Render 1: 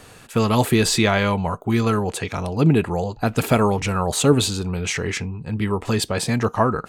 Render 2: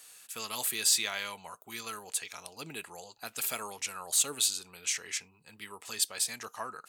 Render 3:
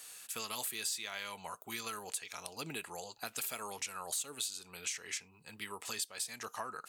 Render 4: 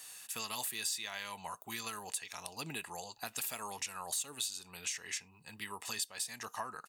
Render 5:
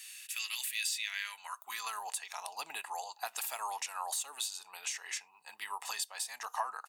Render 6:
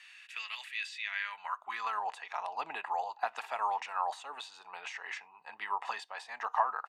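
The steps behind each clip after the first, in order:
differentiator; trim -1.5 dB
compression 4:1, threshold -40 dBFS, peak gain reduction 16 dB; trim +2.5 dB
comb 1.1 ms, depth 32%
high-pass sweep 2.3 kHz -> 810 Hz, 1.03–1.97 s
low-pass 1.8 kHz 12 dB/octave; trim +7 dB

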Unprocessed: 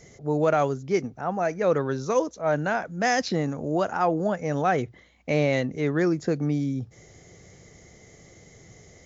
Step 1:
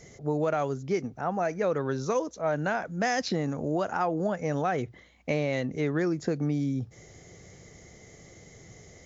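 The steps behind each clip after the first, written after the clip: compression 4:1, threshold -24 dBFS, peak gain reduction 6.5 dB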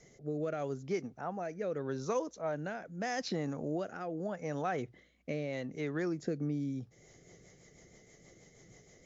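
peaking EQ 84 Hz -10.5 dB 0.72 oct; rotary cabinet horn 0.8 Hz, later 6.3 Hz, at 6.49 s; trim -5.5 dB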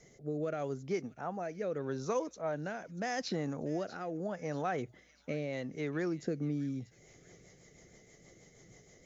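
feedback echo behind a high-pass 639 ms, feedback 45%, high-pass 2.2 kHz, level -15 dB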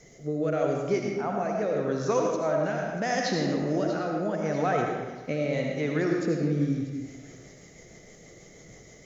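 algorithmic reverb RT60 1.3 s, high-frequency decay 0.75×, pre-delay 40 ms, DRR 0 dB; trim +6.5 dB

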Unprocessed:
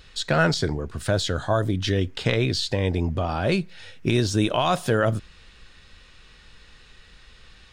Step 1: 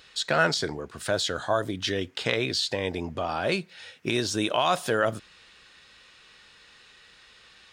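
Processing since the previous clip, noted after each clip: high-pass 470 Hz 6 dB/octave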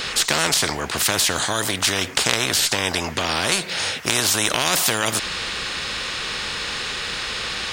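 spectrum-flattening compressor 4:1; trim +7 dB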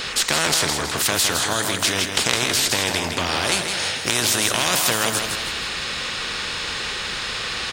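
feedback delay 161 ms, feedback 42%, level -6 dB; trim -1 dB

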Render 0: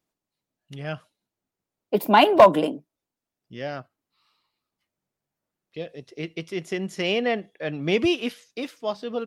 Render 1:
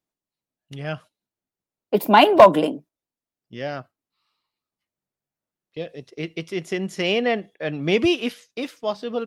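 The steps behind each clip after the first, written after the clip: gate -46 dBFS, range -8 dB; trim +2.5 dB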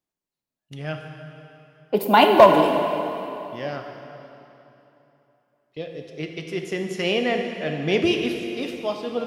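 plate-style reverb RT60 3.1 s, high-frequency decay 0.85×, DRR 3.5 dB; trim -2 dB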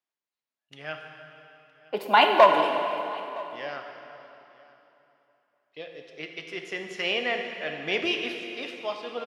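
band-pass filter 1.9 kHz, Q 0.59; delay 964 ms -23.5 dB

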